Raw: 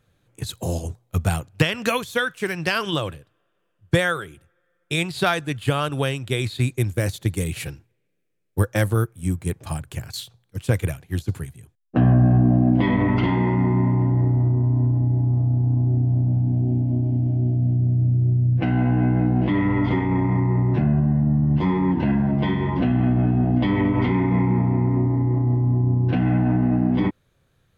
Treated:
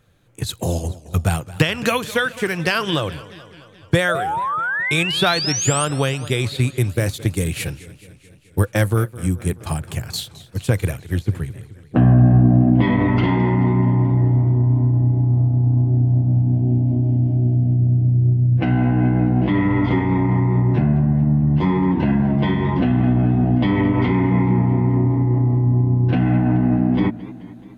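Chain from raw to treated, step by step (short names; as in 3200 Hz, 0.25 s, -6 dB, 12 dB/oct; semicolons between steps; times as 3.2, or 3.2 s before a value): 4.08–5.85 painted sound rise 590–9200 Hz -27 dBFS; 11.17–12.82 tone controls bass +2 dB, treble -7 dB; in parallel at -0.5 dB: compressor, threshold -26 dBFS, peak gain reduction 14 dB; on the sum: warbling echo 0.215 s, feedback 63%, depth 153 cents, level -18 dB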